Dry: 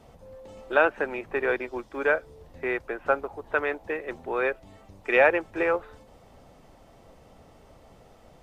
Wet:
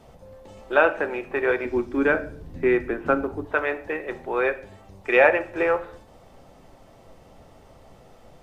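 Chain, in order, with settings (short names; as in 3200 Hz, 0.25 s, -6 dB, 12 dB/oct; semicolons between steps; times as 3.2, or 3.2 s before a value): 1.65–3.45 resonant low shelf 410 Hz +9 dB, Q 1.5; on a send: reverb RT60 0.50 s, pre-delay 6 ms, DRR 9 dB; on the sum: gain +2 dB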